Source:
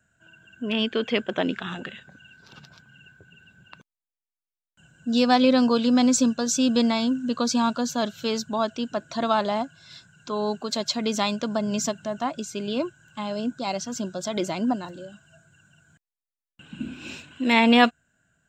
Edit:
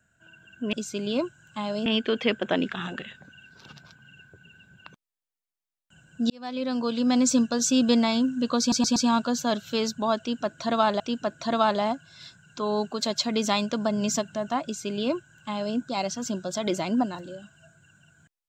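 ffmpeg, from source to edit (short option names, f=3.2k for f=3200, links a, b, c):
-filter_complex "[0:a]asplit=8[a][b][c][d][e][f][g][h];[a]atrim=end=0.732[i];[b]atrim=start=12.338:end=13.472[j];[c]atrim=start=0.728:end=5.17,asetpts=PTS-STARTPTS,afade=t=out:st=4.438:d=0.004:c=hsin[k];[d]atrim=start=5.17:end=7.592,asetpts=PTS-STARTPTS,afade=t=in:d=1.16[l];[e]atrim=start=7.468:end=7.592[m];[f]atrim=start=7.468:end=7.592[n];[g]atrim=start=7.468:end=9.512[o];[h]atrim=start=8.698[p];[i][j]acrossfade=d=0.004:c1=hsin:c2=hsin[q];[k][l]concat=n=2:v=0:a=1[r];[q][r]acrossfade=d=0.004:c1=hsin:c2=hsin[s];[s][m]acrossfade=d=0.004:c1=hsin:c2=hsin[t];[t][n]acrossfade=d=0.004:c1=hsin:c2=hsin[u];[u][o]acrossfade=d=0.004:c1=hsin:c2=hsin[v];[v][p]acrossfade=d=0.004:c1=hsin:c2=hsin"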